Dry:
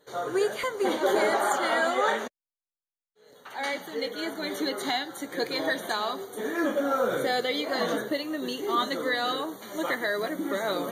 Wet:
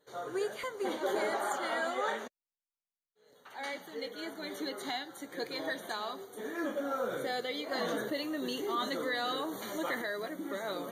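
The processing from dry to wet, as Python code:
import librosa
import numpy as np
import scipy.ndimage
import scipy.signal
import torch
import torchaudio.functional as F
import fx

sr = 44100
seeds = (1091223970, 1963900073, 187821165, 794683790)

y = fx.env_flatten(x, sr, amount_pct=50, at=(7.71, 10.02))
y = y * librosa.db_to_amplitude(-8.5)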